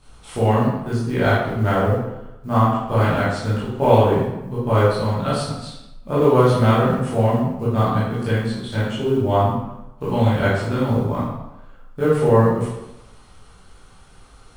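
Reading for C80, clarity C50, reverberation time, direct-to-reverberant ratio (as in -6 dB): 3.0 dB, -1.0 dB, 0.95 s, -10.5 dB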